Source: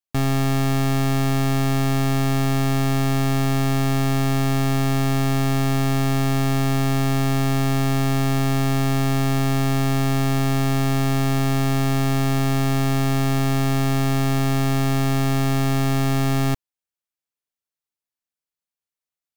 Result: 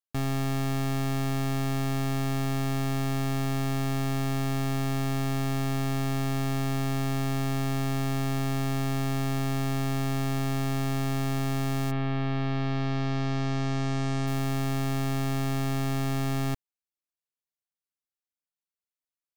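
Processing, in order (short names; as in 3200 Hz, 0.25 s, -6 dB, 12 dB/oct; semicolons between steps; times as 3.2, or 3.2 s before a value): 11.9–14.26 LPF 3300 Hz -> 8100 Hz 24 dB/oct; gain -8 dB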